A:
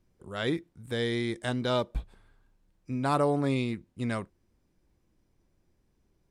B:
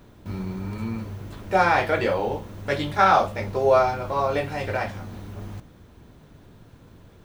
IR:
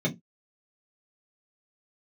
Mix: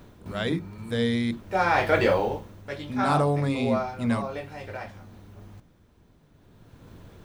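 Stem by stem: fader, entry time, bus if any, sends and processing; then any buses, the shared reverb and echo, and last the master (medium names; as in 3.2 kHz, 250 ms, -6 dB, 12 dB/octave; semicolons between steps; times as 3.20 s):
+2.5 dB, 0.00 s, muted 1.31–2.64 s, send -20 dB, none
+2.0 dB, 0.00 s, no send, auto duck -12 dB, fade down 0.50 s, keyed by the first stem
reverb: on, pre-delay 3 ms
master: none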